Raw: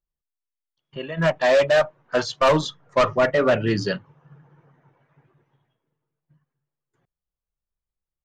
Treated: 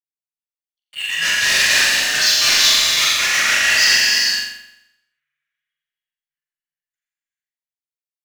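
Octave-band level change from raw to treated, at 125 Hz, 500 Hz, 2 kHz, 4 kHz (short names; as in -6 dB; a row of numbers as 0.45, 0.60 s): under -10 dB, -17.0 dB, +12.5 dB, +19.5 dB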